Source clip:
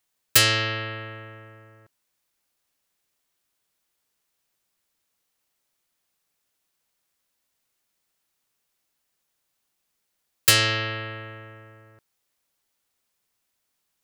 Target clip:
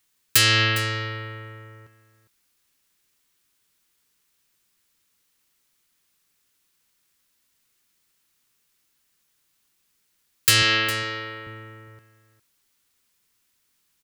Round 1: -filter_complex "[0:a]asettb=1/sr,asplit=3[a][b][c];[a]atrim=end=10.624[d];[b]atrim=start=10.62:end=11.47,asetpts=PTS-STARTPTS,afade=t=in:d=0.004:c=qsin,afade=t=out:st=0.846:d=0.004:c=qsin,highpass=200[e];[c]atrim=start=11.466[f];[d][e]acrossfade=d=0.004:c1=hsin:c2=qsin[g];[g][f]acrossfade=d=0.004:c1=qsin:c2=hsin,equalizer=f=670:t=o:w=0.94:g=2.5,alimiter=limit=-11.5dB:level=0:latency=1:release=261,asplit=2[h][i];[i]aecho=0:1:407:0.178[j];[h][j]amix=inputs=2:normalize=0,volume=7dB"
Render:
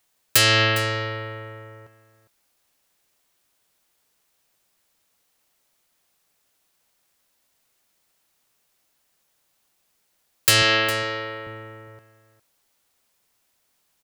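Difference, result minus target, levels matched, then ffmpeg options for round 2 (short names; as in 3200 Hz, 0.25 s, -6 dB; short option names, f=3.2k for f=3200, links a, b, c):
500 Hz band +6.5 dB
-filter_complex "[0:a]asettb=1/sr,asplit=3[a][b][c];[a]atrim=end=10.624[d];[b]atrim=start=10.62:end=11.47,asetpts=PTS-STARTPTS,afade=t=in:d=0.004:c=qsin,afade=t=out:st=0.846:d=0.004:c=qsin,highpass=200[e];[c]atrim=start=11.466[f];[d][e]acrossfade=d=0.004:c1=hsin:c2=qsin[g];[g][f]acrossfade=d=0.004:c1=qsin:c2=hsin,equalizer=f=670:t=o:w=0.94:g=-9.5,alimiter=limit=-11.5dB:level=0:latency=1:release=261,asplit=2[h][i];[i]aecho=0:1:407:0.178[j];[h][j]amix=inputs=2:normalize=0,volume=7dB"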